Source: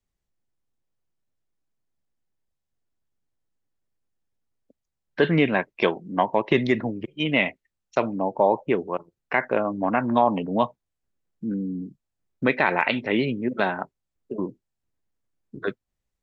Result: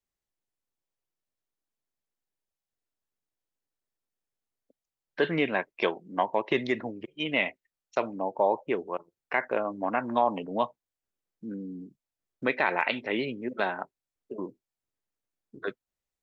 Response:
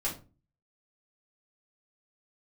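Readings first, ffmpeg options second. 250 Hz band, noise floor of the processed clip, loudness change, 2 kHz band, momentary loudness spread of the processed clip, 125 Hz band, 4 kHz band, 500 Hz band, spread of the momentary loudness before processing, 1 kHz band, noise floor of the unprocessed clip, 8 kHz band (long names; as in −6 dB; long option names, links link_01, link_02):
−8.5 dB, below −85 dBFS, −5.5 dB, −4.5 dB, 13 LU, −12.0 dB, −4.0 dB, −5.0 dB, 12 LU, −4.5 dB, −83 dBFS, can't be measured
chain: -af "bass=frequency=250:gain=-9,treble=frequency=4000:gain=1,volume=-4.5dB"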